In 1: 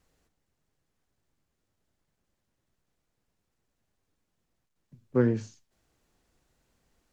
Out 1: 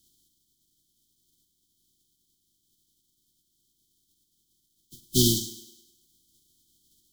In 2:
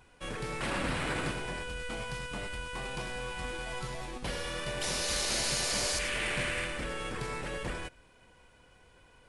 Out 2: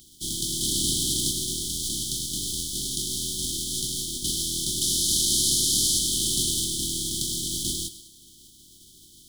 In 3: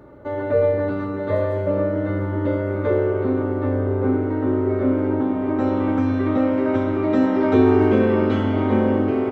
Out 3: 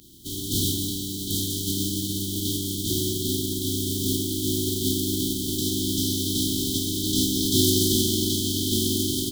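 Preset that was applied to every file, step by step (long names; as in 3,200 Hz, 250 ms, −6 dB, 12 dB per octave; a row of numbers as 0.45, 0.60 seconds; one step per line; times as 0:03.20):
compressing power law on the bin magnitudes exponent 0.28
linear-phase brick-wall band-stop 390–3,000 Hz
feedback echo with a high-pass in the loop 103 ms, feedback 51%, high-pass 170 Hz, level −15 dB
loudness normalisation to −24 LKFS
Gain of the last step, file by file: +6.0, +10.0, −2.0 decibels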